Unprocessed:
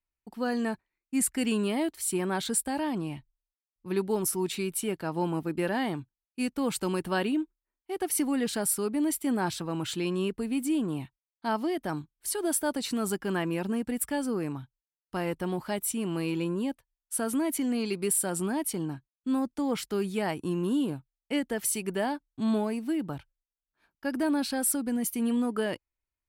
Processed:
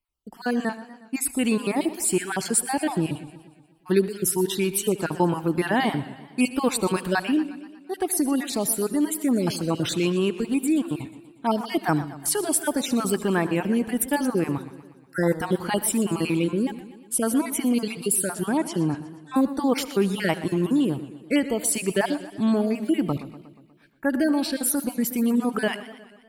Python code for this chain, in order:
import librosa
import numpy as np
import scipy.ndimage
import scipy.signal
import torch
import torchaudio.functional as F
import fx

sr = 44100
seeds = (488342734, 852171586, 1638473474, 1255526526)

y = fx.spec_dropout(x, sr, seeds[0], share_pct=35)
y = fx.rider(y, sr, range_db=4, speed_s=0.5)
y = fx.lowpass(y, sr, hz=5100.0, slope=12, at=(18.23, 19.36))
y = fx.echo_feedback(y, sr, ms=75, feedback_pct=52, wet_db=-20.0)
y = fx.echo_warbled(y, sr, ms=120, feedback_pct=58, rate_hz=2.8, cents=134, wet_db=-15)
y = F.gain(torch.from_numpy(y), 7.5).numpy()